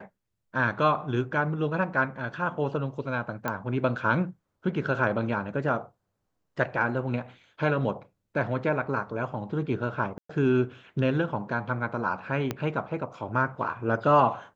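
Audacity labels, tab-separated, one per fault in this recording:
3.480000	3.480000	pop -15 dBFS
10.180000	10.290000	gap 0.114 s
12.510000	12.510000	pop -14 dBFS

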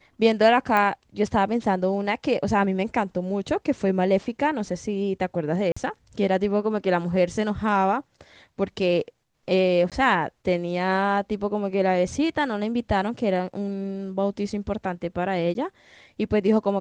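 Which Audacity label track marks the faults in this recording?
0.770000	0.770000	pop -11 dBFS
5.720000	5.760000	gap 45 ms
9.900000	9.920000	gap 17 ms
15.540000	15.550000	gap 11 ms

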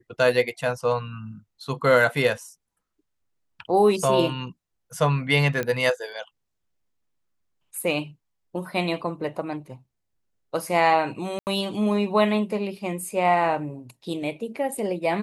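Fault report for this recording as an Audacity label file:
5.630000	5.630000	pop -14 dBFS
11.390000	11.470000	gap 79 ms

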